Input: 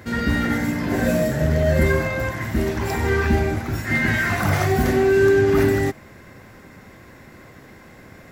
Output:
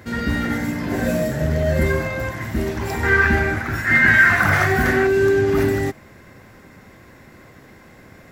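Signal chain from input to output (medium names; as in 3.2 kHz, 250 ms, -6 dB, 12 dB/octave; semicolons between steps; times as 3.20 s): 3.03–5.07 s: peaking EQ 1.6 kHz +12.5 dB 0.98 oct; trim -1 dB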